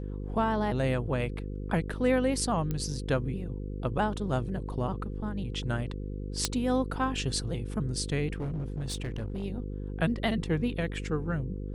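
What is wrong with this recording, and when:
mains buzz 50 Hz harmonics 10 −36 dBFS
0:02.71: click −19 dBFS
0:06.45: click −9 dBFS
0:08.36–0:09.44: clipping −29.5 dBFS

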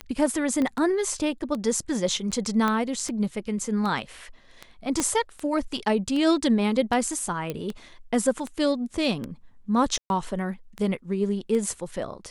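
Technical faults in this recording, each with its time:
scratch tick 78 rpm −19 dBFS
0:00.62: click −16 dBFS
0:02.68: click −12 dBFS
0:05.00: click −10 dBFS
0:07.50: click −16 dBFS
0:09.98–0:10.10: drop-out 121 ms

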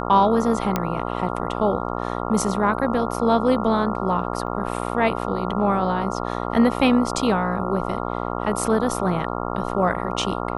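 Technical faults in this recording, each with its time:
mains buzz 60 Hz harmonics 23 −27 dBFS
0:00.76: click −7 dBFS
0:04.47: drop-out 2.3 ms

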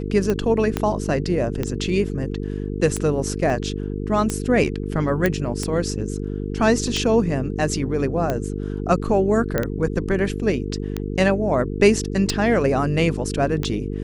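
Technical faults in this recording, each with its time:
mains buzz 50 Hz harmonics 9 −27 dBFS
scratch tick 45 rpm −10 dBFS
0:00.77: click −7 dBFS
0:03.50: drop-out 2.6 ms
0:05.26: click −7 dBFS
0:09.58: click −8 dBFS

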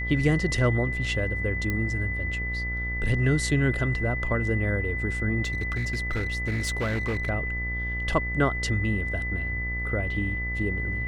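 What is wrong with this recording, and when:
mains buzz 60 Hz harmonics 28 −32 dBFS
whistle 2,000 Hz −30 dBFS
0:01.70: click −15 dBFS
0:05.44–0:07.30: clipping −23.5 dBFS

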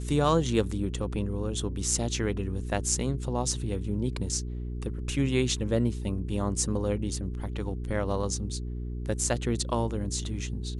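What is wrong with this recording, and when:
mains hum 60 Hz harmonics 7 −34 dBFS

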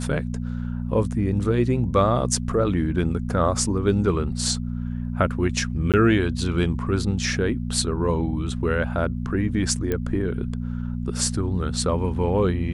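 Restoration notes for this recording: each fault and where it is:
mains hum 60 Hz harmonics 4 −28 dBFS
0:05.92–0:05.94: drop-out 17 ms
0:09.92: click −12 dBFS

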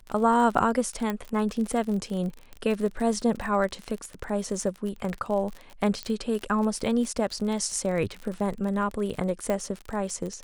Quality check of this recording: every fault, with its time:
surface crackle 40 per second −31 dBFS
0:01.10: click −16 dBFS
0:06.03: click −17 dBFS
0:09.50: click −15 dBFS

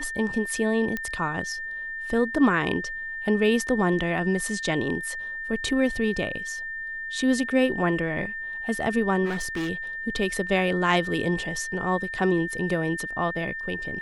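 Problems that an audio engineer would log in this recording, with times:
whistle 1,800 Hz −31 dBFS
0:00.97: click −15 dBFS
0:09.25–0:09.70: clipping −24.5 dBFS

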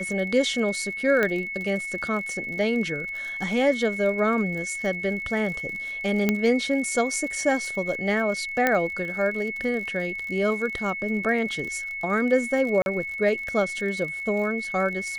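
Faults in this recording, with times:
surface crackle 56 per second −33 dBFS
whistle 2,200 Hz −30 dBFS
0:01.23: click −11 dBFS
0:06.29: click −8 dBFS
0:08.67: click −8 dBFS
0:12.82–0:12.86: drop-out 41 ms

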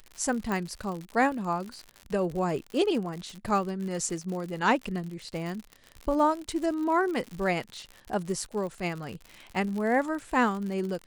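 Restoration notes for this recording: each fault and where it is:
surface crackle 89 per second −34 dBFS
0:00.52: click −18 dBFS

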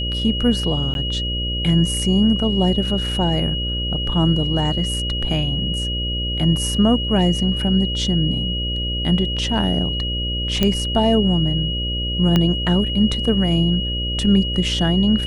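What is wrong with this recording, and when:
mains buzz 60 Hz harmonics 10 −25 dBFS
whistle 2,900 Hz −24 dBFS
0:00.94–0:00.95: drop-out 12 ms
0:10.63: click −4 dBFS
0:12.36: click −5 dBFS

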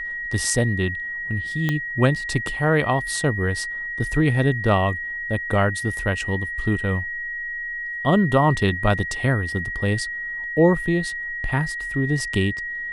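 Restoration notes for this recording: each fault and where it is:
whistle 1,900 Hz −27 dBFS
0:01.69: click −10 dBFS

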